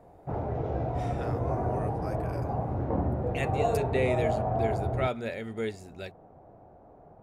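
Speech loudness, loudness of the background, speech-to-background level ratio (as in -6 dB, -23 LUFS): -35.0 LUFS, -30.5 LUFS, -4.5 dB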